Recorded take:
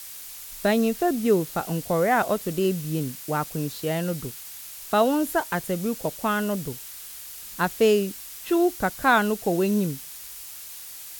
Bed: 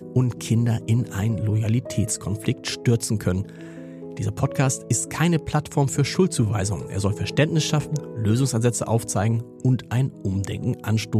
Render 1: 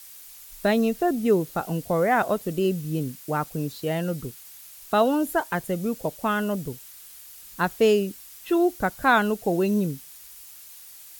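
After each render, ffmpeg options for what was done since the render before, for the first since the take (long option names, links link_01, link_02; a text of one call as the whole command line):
ffmpeg -i in.wav -af "afftdn=noise_reduction=7:noise_floor=-40" out.wav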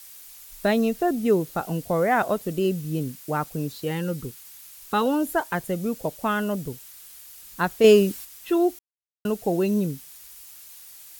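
ffmpeg -i in.wav -filter_complex "[0:a]asettb=1/sr,asplit=3[link_01][link_02][link_03];[link_01]atrim=end=3.854[link_04];[link_02]atrim=start=3.85:end=5.06,asetpts=PTS-STARTPTS,afade=type=in:duration=0.004:curve=qsin,afade=type=out:start_time=1.206:duration=0.004:curve=qsin,asuperstop=centerf=660:order=4:qfactor=4.7[link_05];[link_03]atrim=start=5.056[link_06];[link_04][link_05]acrossfade=duration=0.004:curve1=hsin:curve2=qsin[link_07];[link_07][link_06]acrossfade=duration=0.004:curve1=qsin:curve2=hsin,asettb=1/sr,asplit=3[link_08][link_09][link_10];[link_08]atrim=end=7.844[link_11];[link_09]atrim=start=7.84:end=8.25,asetpts=PTS-STARTPTS,afade=type=in:duration=0.004:curve=qsin,afade=type=out:start_time=0.406:duration=0.004:curve=qsin,acontrast=54[link_12];[link_10]atrim=start=8.246[link_13];[link_11][link_12]acrossfade=duration=0.004:curve1=hsin:curve2=qsin[link_14];[link_14][link_13]acrossfade=duration=0.004:curve1=qsin:curve2=hsin,asplit=3[link_15][link_16][link_17];[link_15]atrim=end=8.79,asetpts=PTS-STARTPTS,afade=type=out:start_time=8.786:duration=0.004:curve=hsin[link_18];[link_16]atrim=start=8.79:end=9.25,asetpts=PTS-STARTPTS,volume=0[link_19];[link_17]atrim=start=9.25,asetpts=PTS-STARTPTS,afade=type=in:duration=0.004:curve=hsin[link_20];[link_18][link_19][link_20]concat=n=3:v=0:a=1" out.wav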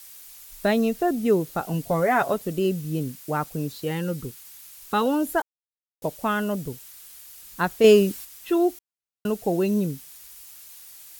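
ffmpeg -i in.wav -filter_complex "[0:a]asettb=1/sr,asplit=3[link_01][link_02][link_03];[link_01]atrim=end=1.734[link_04];[link_02]atrim=start=1.73:end=2.34,asetpts=PTS-STARTPTS,afade=type=in:duration=0.004:curve=qsin,afade=type=out:start_time=0.606:duration=0.004:curve=qsin,aecho=1:1:7.1:0.48,atrim=end_sample=26901[link_05];[link_03]atrim=start=2.336[link_06];[link_04][link_05]acrossfade=duration=0.004:curve1=hsin:curve2=qsin[link_07];[link_07][link_06]acrossfade=duration=0.004:curve1=qsin:curve2=hsin,asplit=3[link_08][link_09][link_10];[link_08]atrim=end=5.42,asetpts=PTS-STARTPTS,afade=type=out:start_time=5.416:duration=0.004:curve=hsin[link_11];[link_09]atrim=start=5.42:end=6.02,asetpts=PTS-STARTPTS,volume=0[link_12];[link_10]atrim=start=6.02,asetpts=PTS-STARTPTS,afade=type=in:duration=0.004:curve=hsin[link_13];[link_11][link_12][link_13]concat=n=3:v=0:a=1" out.wav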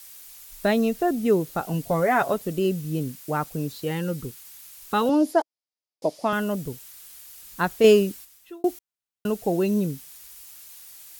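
ffmpeg -i in.wav -filter_complex "[0:a]asettb=1/sr,asplit=3[link_01][link_02][link_03];[link_01]atrim=end=5.094[link_04];[link_02]atrim=start=5.09:end=6.33,asetpts=PTS-STARTPTS,afade=type=in:duration=0.004:curve=qsin,afade=type=out:start_time=1.236:duration=0.004:curve=qsin,highpass=200,equalizer=frequency=310:width_type=q:width=4:gain=5,equalizer=frequency=640:width_type=q:width=4:gain=6,equalizer=frequency=1500:width_type=q:width=4:gain=-8,equalizer=frequency=2800:width_type=q:width=4:gain=-3,equalizer=frequency=4900:width_type=q:width=4:gain=9,equalizer=frequency=8000:width_type=q:width=4:gain=-8,lowpass=frequency=10000:width=0.5412,lowpass=frequency=10000:width=1.3066[link_05];[link_03]atrim=start=6.326[link_06];[link_04][link_05]acrossfade=duration=0.004:curve1=hsin:curve2=qsin[link_07];[link_07][link_06]acrossfade=duration=0.004:curve1=qsin:curve2=hsin,asplit=2[link_08][link_09];[link_08]atrim=end=8.64,asetpts=PTS-STARTPTS,afade=type=out:start_time=7.82:duration=0.82[link_10];[link_09]atrim=start=8.64,asetpts=PTS-STARTPTS,afade=type=in:duration=0.004:curve=hsin[link_11];[link_10][link_11]concat=n=2:v=0:a=1" out.wav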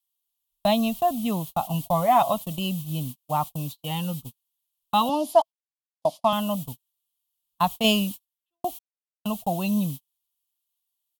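ffmpeg -i in.wav -af "agate=range=-40dB:threshold=-31dB:ratio=16:detection=peak,firequalizer=gain_entry='entry(220,0);entry(400,-20);entry(650,4);entry(1100,6);entry(1500,-17);entry(3100,10);entry(5000,-1);entry(12000,5)':delay=0.05:min_phase=1" out.wav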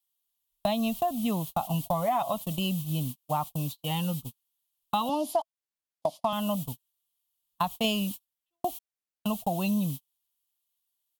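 ffmpeg -i in.wav -af "acompressor=threshold=-24dB:ratio=6" out.wav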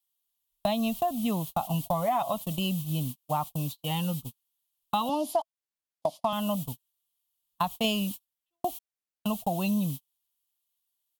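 ffmpeg -i in.wav -af anull out.wav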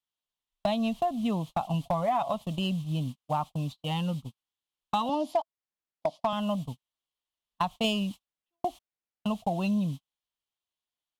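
ffmpeg -i in.wav -af "adynamicsmooth=sensitivity=4.5:basefreq=4500,volume=18dB,asoftclip=hard,volume=-18dB" out.wav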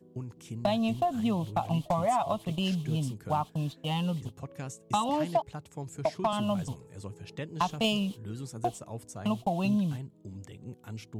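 ffmpeg -i in.wav -i bed.wav -filter_complex "[1:a]volume=-19dB[link_01];[0:a][link_01]amix=inputs=2:normalize=0" out.wav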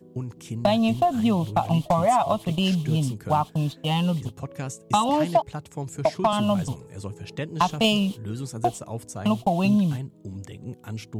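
ffmpeg -i in.wav -af "volume=7dB" out.wav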